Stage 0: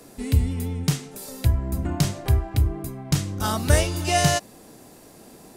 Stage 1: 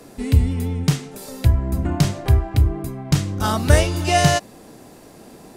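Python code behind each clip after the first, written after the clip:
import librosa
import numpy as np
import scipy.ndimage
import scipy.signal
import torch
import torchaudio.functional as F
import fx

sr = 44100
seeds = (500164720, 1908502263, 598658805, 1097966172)

y = fx.high_shelf(x, sr, hz=5800.0, db=-7.0)
y = y * 10.0 ** (4.5 / 20.0)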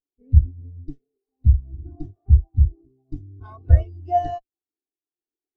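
y = fx.lower_of_two(x, sr, delay_ms=2.7)
y = fx.spectral_expand(y, sr, expansion=2.5)
y = y * 10.0 ** (1.0 / 20.0)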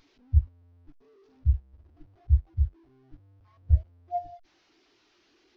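y = fx.delta_mod(x, sr, bps=32000, step_db=-30.0)
y = fx.spectral_expand(y, sr, expansion=1.5)
y = y * 10.0 ** (-8.0 / 20.0)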